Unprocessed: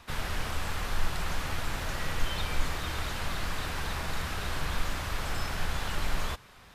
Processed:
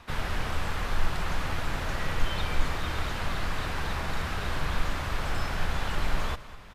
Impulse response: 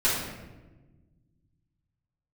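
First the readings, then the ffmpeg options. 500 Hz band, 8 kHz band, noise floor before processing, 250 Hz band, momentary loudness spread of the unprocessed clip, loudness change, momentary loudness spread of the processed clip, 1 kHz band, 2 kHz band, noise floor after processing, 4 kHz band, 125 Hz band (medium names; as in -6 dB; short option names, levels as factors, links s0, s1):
+3.0 dB, -3.0 dB, -53 dBFS, +3.0 dB, 1 LU, +2.0 dB, 1 LU, +2.5 dB, +2.0 dB, -43 dBFS, 0.0 dB, +3.0 dB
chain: -af "highshelf=f=4500:g=-8.5,aecho=1:1:203|406|609|812|1015:0.141|0.0735|0.0382|0.0199|0.0103,volume=1.41"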